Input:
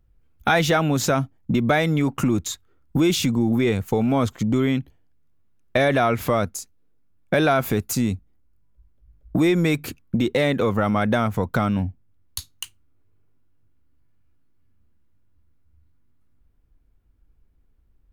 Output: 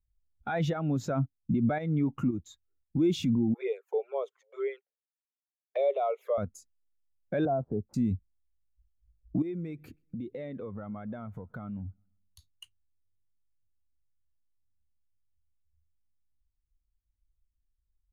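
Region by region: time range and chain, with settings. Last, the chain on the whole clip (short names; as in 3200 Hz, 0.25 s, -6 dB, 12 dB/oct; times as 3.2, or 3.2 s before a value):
0.73–3.03 tremolo saw up 1.9 Hz, depth 65% + bell 9000 Hz -4 dB 0.22 oct
3.54–6.38 rippled Chebyshev high-pass 390 Hz, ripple 3 dB + envelope flanger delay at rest 3 ms, full sweep at -22 dBFS
7.45–7.94 switching dead time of 0.073 ms + ladder low-pass 1100 Hz, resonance 20% + three-band squash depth 100%
9.42–12.49 compressor 4:1, threshold -31 dBFS + feedback echo 0.127 s, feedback 59%, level -24 dB
whole clip: high shelf 3000 Hz -5.5 dB; limiter -18 dBFS; spectral expander 1.5:1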